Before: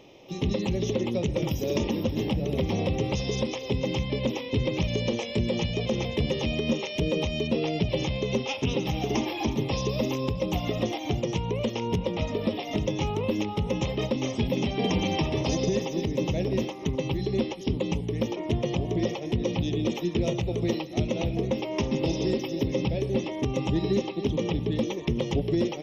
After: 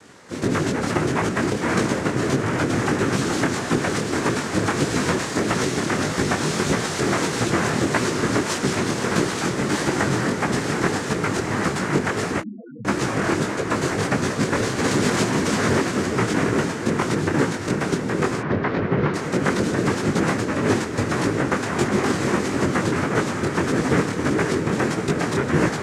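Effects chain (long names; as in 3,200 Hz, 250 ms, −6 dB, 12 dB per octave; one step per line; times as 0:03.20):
cochlear-implant simulation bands 3
feedback delay with all-pass diffusion 467 ms, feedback 64%, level −9 dB
0:12.40–0:12.85: spectral peaks only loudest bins 1
0:18.40–0:19.14: Bessel low-pass filter 2,700 Hz, order 6
micro pitch shift up and down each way 56 cents
level +9 dB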